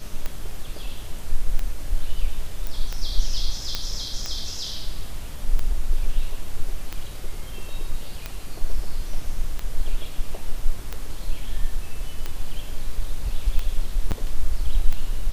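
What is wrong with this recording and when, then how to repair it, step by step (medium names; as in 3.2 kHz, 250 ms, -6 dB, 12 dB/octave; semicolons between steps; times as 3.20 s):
tick 45 rpm -14 dBFS
2.67 s: pop
3.75 s: pop -10 dBFS
14.11–14.12 s: dropout 8 ms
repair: de-click; interpolate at 14.11 s, 8 ms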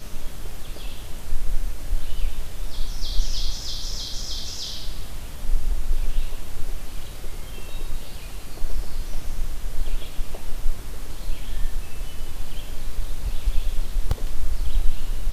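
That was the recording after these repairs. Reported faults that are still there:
nothing left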